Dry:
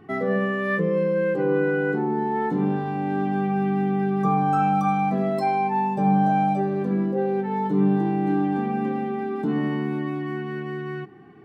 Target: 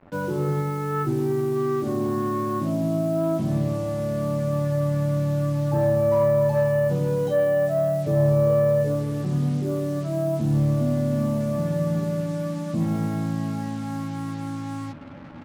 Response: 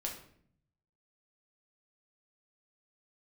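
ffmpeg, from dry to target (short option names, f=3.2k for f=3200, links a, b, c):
-filter_complex "[0:a]asetrate=32667,aresample=44100,highshelf=f=2.4k:g=-6.5,areverse,acompressor=mode=upward:threshold=-34dB:ratio=2.5,areverse,asoftclip=type=tanh:threshold=-12dB,acrusher=bits=6:mix=0:aa=0.5,asplit=2[a][b];[b]adelay=12,volume=-7dB[c];[a][c]amix=inputs=2:normalize=0"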